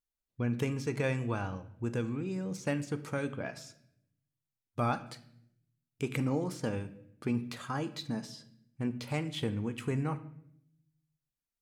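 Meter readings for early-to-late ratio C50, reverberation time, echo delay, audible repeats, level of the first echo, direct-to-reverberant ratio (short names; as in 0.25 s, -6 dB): 14.5 dB, 0.70 s, none, none, none, 11.0 dB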